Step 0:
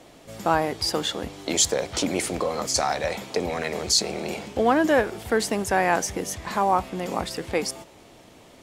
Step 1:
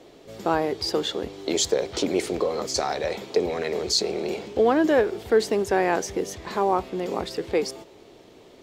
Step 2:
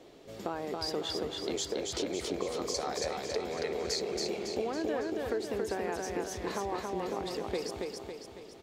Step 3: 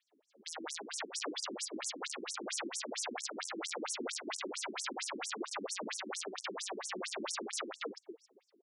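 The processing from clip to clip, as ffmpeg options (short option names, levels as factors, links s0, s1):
-af "equalizer=f=400:t=o:w=0.67:g=11,equalizer=f=4000:t=o:w=0.67:g=4,equalizer=f=10000:t=o:w=0.67:g=-7,volume=0.631"
-filter_complex "[0:a]acompressor=threshold=0.0447:ratio=6,asplit=2[s0][s1];[s1]aecho=0:1:277|554|831|1108|1385|1662|1939:0.708|0.361|0.184|0.0939|0.0479|0.0244|0.0125[s2];[s0][s2]amix=inputs=2:normalize=0,volume=0.562"
-af "agate=range=0.112:threshold=0.0112:ratio=16:detection=peak,aeval=exprs='(mod(42.2*val(0)+1,2)-1)/42.2':c=same,afftfilt=real='re*between(b*sr/1024,250*pow(7900/250,0.5+0.5*sin(2*PI*4.4*pts/sr))/1.41,250*pow(7900/250,0.5+0.5*sin(2*PI*4.4*pts/sr))*1.41)':imag='im*between(b*sr/1024,250*pow(7900/250,0.5+0.5*sin(2*PI*4.4*pts/sr))/1.41,250*pow(7900/250,0.5+0.5*sin(2*PI*4.4*pts/sr))*1.41)':win_size=1024:overlap=0.75,volume=2.11"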